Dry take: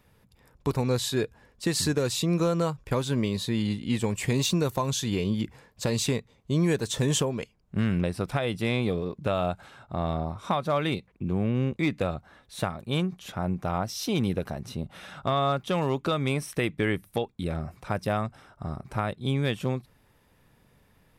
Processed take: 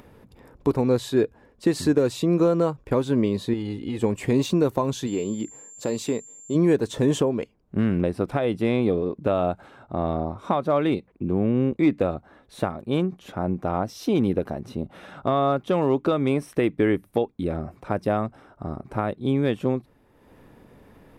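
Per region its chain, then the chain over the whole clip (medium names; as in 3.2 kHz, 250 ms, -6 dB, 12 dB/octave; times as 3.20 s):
3.53–4.03 s: compression, threshold -26 dBFS + comb 2.4 ms, depth 49%
5.06–6.54 s: high-pass 320 Hz 6 dB/octave + peaking EQ 1.4 kHz -3.5 dB 2.9 oct + whistle 7.3 kHz -36 dBFS
whole clip: FFT filter 160 Hz 0 dB, 290 Hz +9 dB, 5.2 kHz -7 dB; upward compressor, threshold -41 dBFS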